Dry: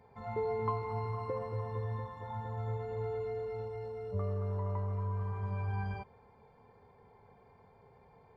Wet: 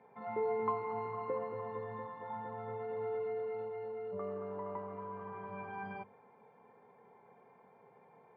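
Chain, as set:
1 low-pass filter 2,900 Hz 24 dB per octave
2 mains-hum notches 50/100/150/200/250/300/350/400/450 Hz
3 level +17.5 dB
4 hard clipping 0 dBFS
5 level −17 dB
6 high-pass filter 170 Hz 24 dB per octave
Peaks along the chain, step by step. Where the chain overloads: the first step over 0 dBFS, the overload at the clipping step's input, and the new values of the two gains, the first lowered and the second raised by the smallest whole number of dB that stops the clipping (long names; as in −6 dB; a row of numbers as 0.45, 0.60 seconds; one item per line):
−21.5, −22.0, −4.5, −4.5, −21.5, −21.5 dBFS
no step passes full scale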